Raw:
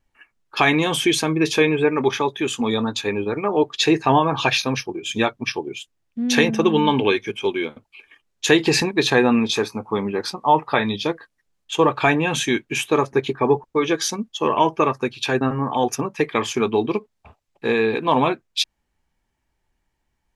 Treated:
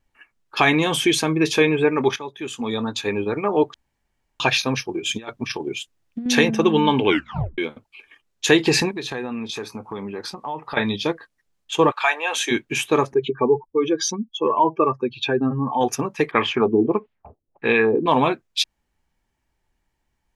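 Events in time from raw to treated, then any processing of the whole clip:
2.16–3.17 fade in, from -14 dB
3.74–4.4 room tone
4.92–6.26 negative-ratio compressor -26 dBFS, ratio -0.5
7.07 tape stop 0.51 s
8.96–10.77 compressor 3:1, threshold -29 dBFS
11.9–12.5 HPF 1000 Hz -> 340 Hz 24 dB/oct
13.14–15.81 spectral contrast raised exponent 1.8
16.31–18.06 LFO low-pass sine 1.6 Hz 310–2900 Hz

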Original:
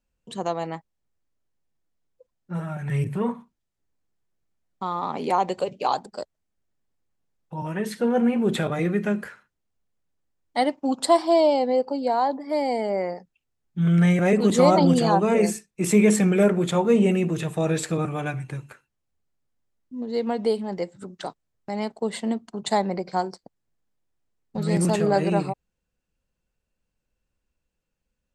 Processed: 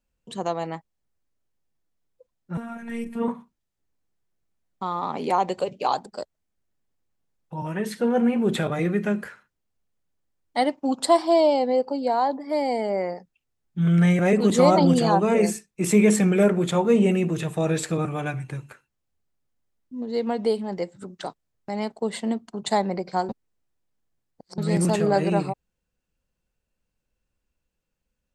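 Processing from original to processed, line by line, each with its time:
2.57–3.28 robotiser 232 Hz
23.29–24.58 reverse

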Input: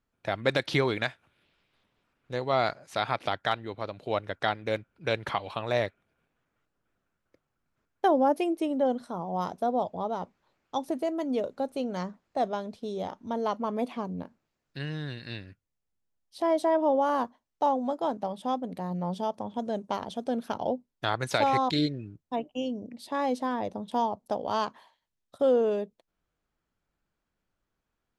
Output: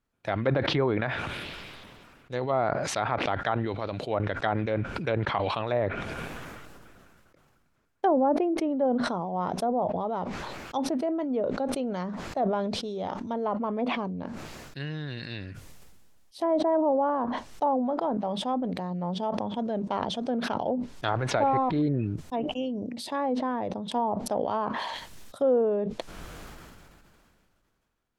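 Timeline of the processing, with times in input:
21.08–21.82 zero-crossing step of -35 dBFS
whole clip: treble ducked by the level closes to 1200 Hz, closed at -23.5 dBFS; sustainer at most 24 dB/s

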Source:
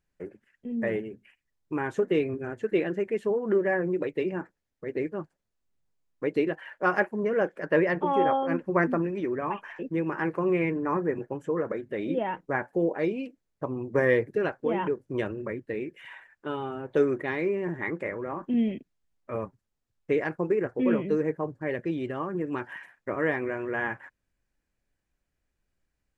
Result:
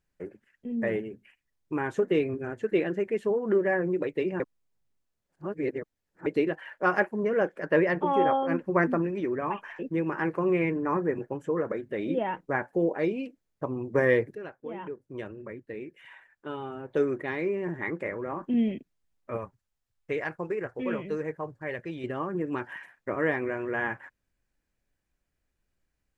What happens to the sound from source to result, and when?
4.4–6.26 reverse
14.35–18.33 fade in, from -13 dB
19.37–22.04 bell 270 Hz -8.5 dB 1.9 oct

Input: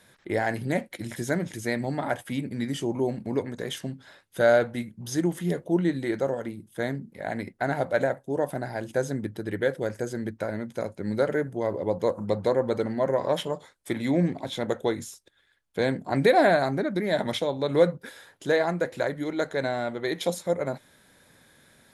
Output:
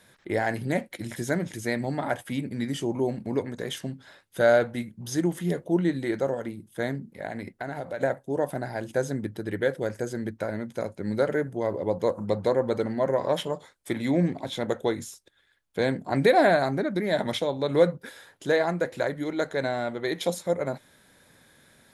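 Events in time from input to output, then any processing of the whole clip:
7.25–8.03 compressor, threshold -29 dBFS

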